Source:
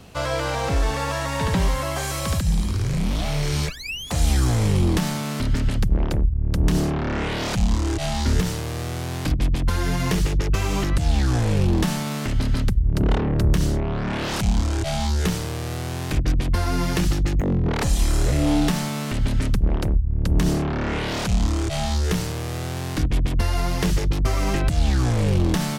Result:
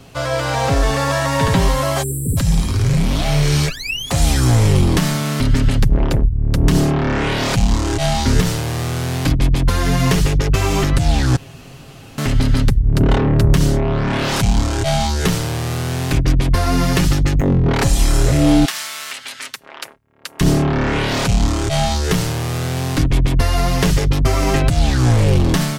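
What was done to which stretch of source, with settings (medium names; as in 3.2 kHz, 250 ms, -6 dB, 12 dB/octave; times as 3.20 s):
2.03–2.37 s: spectral selection erased 510–7400 Hz
11.36–12.18 s: room tone
18.65–20.41 s: high-pass 1.4 kHz
whole clip: comb 7.4 ms, depth 45%; level rider gain up to 4 dB; trim +2.5 dB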